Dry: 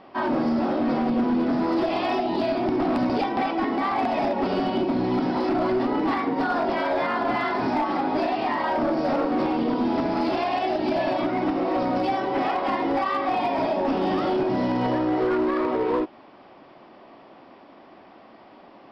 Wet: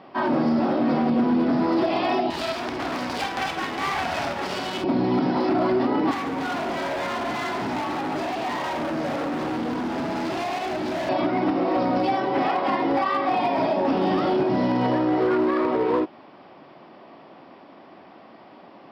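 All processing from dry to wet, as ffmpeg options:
-filter_complex "[0:a]asettb=1/sr,asplit=3[a][b][c];[a]atrim=end=2.304[d];[b]atrim=start=2.3:end=4.84,asetpts=PTS-STARTPTS,afade=t=in:d=0.004:c=qsin,afade=t=out:st=2.536:d=0.004:c=qsin,tiltshelf=f=700:g=-8,aeval=exprs='max(val(0),0)':c=same,asplit=2[e][f];[f]adelay=49,volume=-12dB[g];[e][g]amix=inputs=2:normalize=0,atrim=end_sample=112014[h];[c]atrim=start=4.836[i];[d][h]acrossfade=d=0.004:c1=hsin:c2=qsin[j];[j][i]acrossfade=d=0.004:c1=qsin:c2=hsin,asettb=1/sr,asplit=3[k][l][m];[k]atrim=end=6.114[n];[l]atrim=start=6.11:end=11.09,asetpts=PTS-STARTPTS,afade=t=in:d=0.004:c=qsin,afade=t=out:st=4.976:d=0.004:c=qsin,volume=27.5dB,asoftclip=hard,volume=-27.5dB,aecho=1:1:140:0.299,atrim=end_sample=219618[o];[m]atrim=start=11.086[p];[n][o]acrossfade=d=0.004:c1=hsin:c2=qsin[q];[q][p]acrossfade=d=0.004:c1=qsin:c2=hsin,highpass=73,equalizer=f=160:w=3.7:g=4.5,volume=1.5dB"

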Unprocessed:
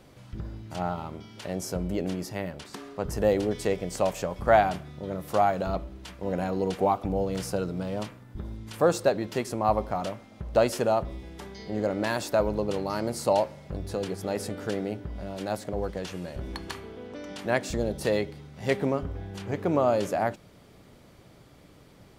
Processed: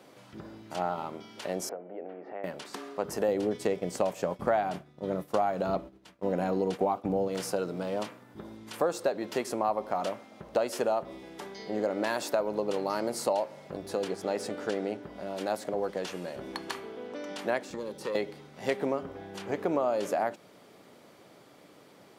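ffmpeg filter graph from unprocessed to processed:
-filter_complex "[0:a]asettb=1/sr,asplit=3[a][b][c];[a]atrim=end=1.694[d];[b]atrim=start=1.69:end=2.44,asetpts=PTS-STARTPTS,afade=t=in:d=0.004:c=qsin,afade=t=out:st=0.746:d=0.004:c=qsin,acompressor=threshold=-35dB:ratio=12:attack=3.2:release=140:knee=1:detection=peak,highpass=290,equalizer=f=480:t=q:w=4:g=5,equalizer=f=720:t=q:w=4:g=8,equalizer=f=1k:t=q:w=4:g=-5,lowpass=f=2.1k:w=0.5412,lowpass=f=2.1k:w=1.3066[e];[c]atrim=start=2.436[f];[d][e]acrossfade=d=0.004:c1=hsin:c2=qsin[g];[g][f]acrossfade=d=0.004:c1=qsin:c2=hsin,asettb=1/sr,asplit=3[h][i][j];[h]atrim=end=3.284[k];[i]atrim=start=3.28:end=7.28,asetpts=PTS-STARTPTS,afade=t=in:d=0.004:c=qsin,afade=t=out:st=3.996:d=0.004:c=qsin,agate=range=-33dB:threshold=-34dB:ratio=3:release=100:detection=peak,lowshelf=f=250:g=10.5[l];[j]atrim=start=7.276[m];[k][l]acrossfade=d=0.004:c1=hsin:c2=qsin[n];[n][m]acrossfade=d=0.004:c1=qsin:c2=hsin,asettb=1/sr,asplit=3[o][p][q];[o]atrim=end=14.084[r];[p]atrim=start=14.08:end=15.03,asetpts=PTS-STARTPTS,afade=t=in:d=0.004:c=qsin,afade=t=out:st=0.946:d=0.004:c=qsin,lowpass=8.8k,aeval=exprs='sgn(val(0))*max(abs(val(0))-0.00119,0)':c=same[s];[q]atrim=start=15.026[t];[r][s]acrossfade=d=0.004:c1=hsin:c2=qsin[u];[u][t]acrossfade=d=0.004:c1=qsin:c2=hsin,asettb=1/sr,asplit=3[v][w][x];[v]atrim=end=17.634[y];[w]atrim=start=17.63:end=18.15,asetpts=PTS-STARTPTS,afade=t=in:d=0.004:c=qsin,afade=t=out:st=0.516:d=0.004:c=qsin,acrossover=split=1800|7200[z][aa][ab];[z]acompressor=threshold=-29dB:ratio=4[ac];[aa]acompressor=threshold=-46dB:ratio=4[ad];[ab]acompressor=threshold=-55dB:ratio=4[ae];[ac][ad][ae]amix=inputs=3:normalize=0,aeval=exprs='(tanh(14.1*val(0)+0.55)-tanh(0.55))/14.1':c=same,asuperstop=centerf=670:order=4:qfactor=4.7[af];[x]atrim=start=18.146[ag];[y][af]acrossfade=d=0.004:c1=hsin:c2=qsin[ah];[ah][ag]acrossfade=d=0.004:c1=qsin:c2=hsin,highpass=240,equalizer=f=750:t=o:w=2.2:g=2.5,acompressor=threshold=-25dB:ratio=4"

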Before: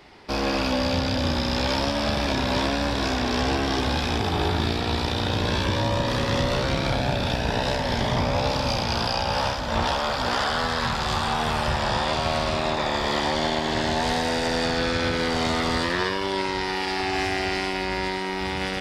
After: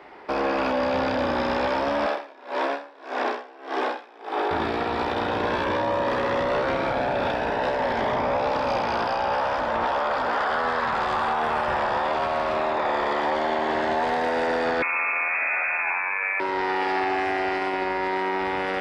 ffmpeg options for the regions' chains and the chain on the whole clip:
-filter_complex "[0:a]asettb=1/sr,asplit=3[a][b][c];[a]atrim=end=2.064[d];[b]atrim=start=2.06:end=4.51,asetpts=PTS-STARTPTS,afade=t=in:d=0.004:c=qsin,afade=t=out:st=2.446:d=0.004:c=qsin,highpass=f=310:w=0.5412,highpass=f=310:w=1.3066,aeval=exprs='val(0)*pow(10,-27*(0.5-0.5*cos(2*PI*1.7*n/s))/20)':c=same[e];[c]atrim=start=4.506[f];[d][e]acrossfade=d=0.004:c1=hsin:c2=qsin[g];[g][f]acrossfade=d=0.004:c1=qsin:c2=hsin,asettb=1/sr,asplit=3[h][i][j];[h]atrim=end=14.824[k];[i]atrim=start=14.82:end=16.4,asetpts=PTS-STARTPTS,afade=t=in:d=0.004:c=qsin,afade=t=out:st=1.576:d=0.004:c=qsin,equalizer=f=180:t=o:w=2.6:g=8,lowpass=f=2.3k:t=q:w=0.5098,lowpass=f=2.3k:t=q:w=0.6013,lowpass=f=2.3k:t=q:w=0.9,lowpass=f=2.3k:t=q:w=2.563,afreqshift=-2700,acrossover=split=320|690|1900[l][m][n][o];[l]acompressor=threshold=-57dB:ratio=3[p];[m]acompressor=threshold=-50dB:ratio=3[q];[n]acompressor=threshold=-30dB:ratio=3[r];[o]acompressor=threshold=-28dB:ratio=3[s];[p][q][r][s]amix=inputs=4:normalize=0[t];[j]atrim=start=16.396[u];[k][t]acrossfade=d=0.004:c1=hsin:c2=qsin[v];[v][u]acrossfade=d=0.004:c1=qsin:c2=hsin,acrossover=split=300 2200:gain=0.126 1 0.112[w][x][y];[w][x][y]amix=inputs=3:normalize=0,alimiter=limit=-23.5dB:level=0:latency=1:release=13,volume=7dB"

